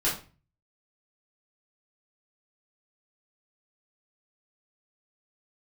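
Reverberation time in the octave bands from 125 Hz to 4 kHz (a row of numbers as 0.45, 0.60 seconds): 0.70, 0.50, 0.35, 0.35, 0.35, 0.30 seconds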